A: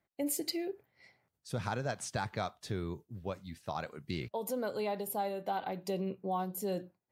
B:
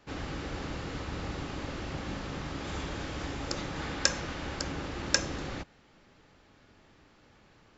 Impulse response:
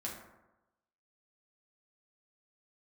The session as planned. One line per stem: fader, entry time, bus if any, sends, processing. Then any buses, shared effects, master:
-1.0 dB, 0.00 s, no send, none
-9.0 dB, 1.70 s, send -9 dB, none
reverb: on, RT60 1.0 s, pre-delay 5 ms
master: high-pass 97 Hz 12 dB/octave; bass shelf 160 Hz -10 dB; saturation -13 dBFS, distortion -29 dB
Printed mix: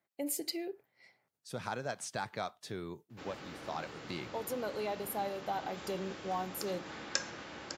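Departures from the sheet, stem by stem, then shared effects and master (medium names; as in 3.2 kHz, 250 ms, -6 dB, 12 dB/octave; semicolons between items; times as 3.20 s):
stem B: entry 1.70 s -> 3.10 s; master: missing saturation -13 dBFS, distortion -29 dB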